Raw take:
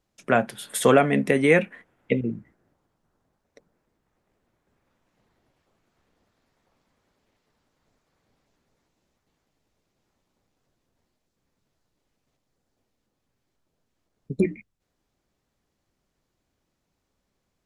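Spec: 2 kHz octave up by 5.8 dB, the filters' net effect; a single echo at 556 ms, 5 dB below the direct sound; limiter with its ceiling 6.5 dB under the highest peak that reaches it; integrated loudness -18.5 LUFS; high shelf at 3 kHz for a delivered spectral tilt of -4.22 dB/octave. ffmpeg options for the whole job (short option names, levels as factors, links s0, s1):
-af "equalizer=f=2000:t=o:g=5,highshelf=f=3000:g=5.5,alimiter=limit=0.355:level=0:latency=1,aecho=1:1:556:0.562,volume=1.88"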